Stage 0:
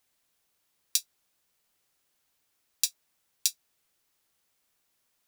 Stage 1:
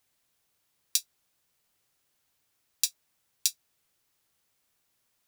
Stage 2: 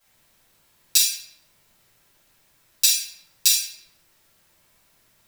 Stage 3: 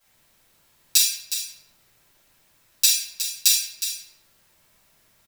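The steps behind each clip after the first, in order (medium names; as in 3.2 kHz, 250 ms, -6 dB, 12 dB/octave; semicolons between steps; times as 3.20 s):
peaking EQ 110 Hz +5 dB 1.1 oct
simulated room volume 200 m³, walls mixed, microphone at 5.6 m
delay 364 ms -10 dB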